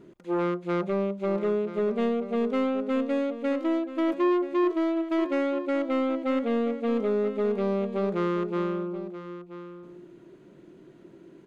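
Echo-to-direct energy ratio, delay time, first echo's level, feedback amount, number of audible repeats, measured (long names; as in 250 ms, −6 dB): −13.0 dB, 981 ms, −13.0 dB, repeats not evenly spaced, 1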